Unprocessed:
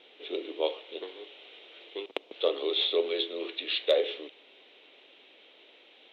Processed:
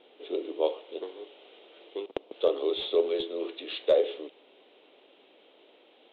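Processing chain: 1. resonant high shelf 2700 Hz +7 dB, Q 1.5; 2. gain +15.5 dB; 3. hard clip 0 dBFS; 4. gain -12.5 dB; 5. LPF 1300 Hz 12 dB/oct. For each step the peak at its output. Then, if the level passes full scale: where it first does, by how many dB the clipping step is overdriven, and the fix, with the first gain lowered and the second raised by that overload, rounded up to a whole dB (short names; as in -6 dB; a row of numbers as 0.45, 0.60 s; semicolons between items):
-6.5, +9.0, 0.0, -12.5, -12.0 dBFS; step 2, 9.0 dB; step 2 +6.5 dB, step 4 -3.5 dB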